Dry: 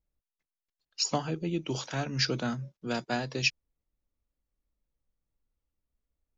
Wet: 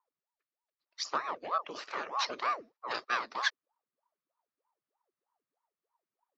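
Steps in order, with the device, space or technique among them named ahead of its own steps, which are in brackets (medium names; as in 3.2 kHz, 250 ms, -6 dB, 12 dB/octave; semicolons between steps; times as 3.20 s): voice changer toy (ring modulator with a swept carrier 530 Hz, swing 85%, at 3.2 Hz; cabinet simulation 560–4900 Hz, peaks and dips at 760 Hz -5 dB, 1.2 kHz +8 dB, 1.8 kHz +3 dB, 3.3 kHz -5 dB); 2.30–3.19 s: dynamic bell 4.4 kHz, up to +6 dB, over -53 dBFS, Q 0.89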